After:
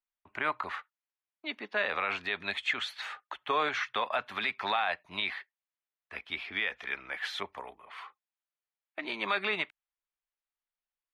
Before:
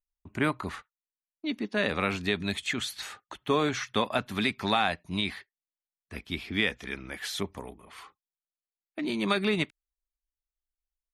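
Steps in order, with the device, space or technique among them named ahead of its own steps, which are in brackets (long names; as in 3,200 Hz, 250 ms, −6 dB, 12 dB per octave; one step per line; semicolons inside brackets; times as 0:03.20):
DJ mixer with the lows and highs turned down (three-way crossover with the lows and the highs turned down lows −22 dB, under 570 Hz, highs −21 dB, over 3,500 Hz; brickwall limiter −22.5 dBFS, peak gain reduction 8 dB)
level +4 dB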